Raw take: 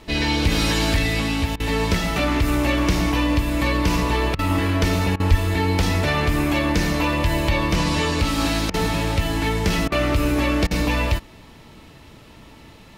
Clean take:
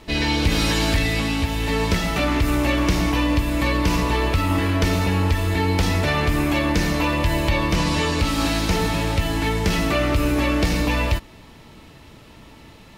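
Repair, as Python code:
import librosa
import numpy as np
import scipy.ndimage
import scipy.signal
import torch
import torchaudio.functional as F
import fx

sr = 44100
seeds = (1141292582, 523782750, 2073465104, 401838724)

y = fx.highpass(x, sr, hz=140.0, slope=24, at=(5.3, 5.42), fade=0.02)
y = fx.fix_interpolate(y, sr, at_s=(1.56, 4.35, 5.16, 8.7, 9.88, 10.67), length_ms=38.0)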